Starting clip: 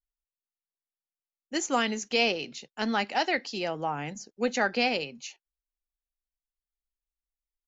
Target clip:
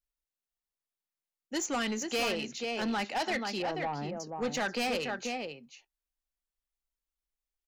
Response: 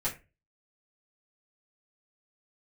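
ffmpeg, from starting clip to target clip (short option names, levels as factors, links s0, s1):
-filter_complex "[0:a]asettb=1/sr,asplit=3[s0][s1][s2];[s0]atrim=end=3.624[s3];[s1]atrim=start=3.62:end=4.2,asetpts=PTS-STARTPTS,afade=t=in:d=0.004:c=qsin,afade=t=out:st=0.576:d=0.004:c=qsin,lowpass=1000[s4];[s2]atrim=start=4.196[s5];[s3][s4]acrossfade=d=0.004:c1=hsin:c2=qsin[s6];[s6][s5]acrossfade=d=0.004:c1=qsin:c2=hsin,asplit=2[s7][s8];[s8]adelay=484,volume=0.447,highshelf=f=4000:g=-10.9[s9];[s7][s9]amix=inputs=2:normalize=0,asoftclip=type=tanh:threshold=0.0473"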